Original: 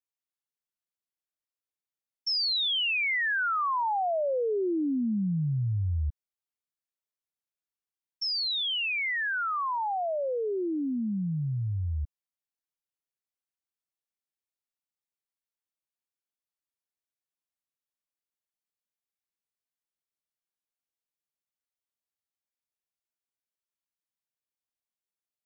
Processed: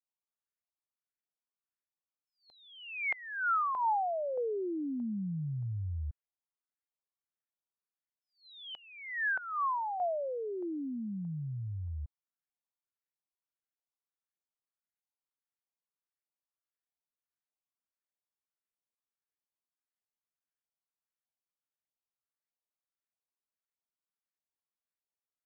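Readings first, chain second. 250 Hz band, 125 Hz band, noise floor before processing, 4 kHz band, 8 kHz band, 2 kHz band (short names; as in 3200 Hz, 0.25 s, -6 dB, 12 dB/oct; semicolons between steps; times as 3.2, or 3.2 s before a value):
-7.5 dB, -8.0 dB, under -85 dBFS, -22.5 dB, n/a, -7.0 dB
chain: vibrato 0.33 Hz 26 cents; LFO low-pass saw up 1.6 Hz 750–2000 Hz; attack slew limiter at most 200 dB/s; gain -8 dB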